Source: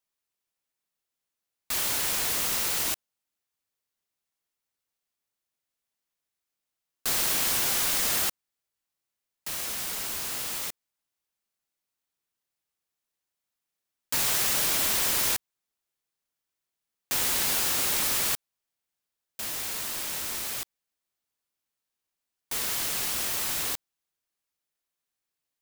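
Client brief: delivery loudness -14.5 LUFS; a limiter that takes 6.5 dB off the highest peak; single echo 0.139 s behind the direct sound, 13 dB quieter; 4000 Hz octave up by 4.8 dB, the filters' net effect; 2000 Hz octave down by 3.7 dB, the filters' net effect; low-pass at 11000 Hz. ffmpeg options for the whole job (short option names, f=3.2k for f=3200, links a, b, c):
-af "lowpass=11k,equalizer=f=2k:t=o:g=-7.5,equalizer=f=4k:t=o:g=8,alimiter=limit=-20dB:level=0:latency=1,aecho=1:1:139:0.224,volume=14.5dB"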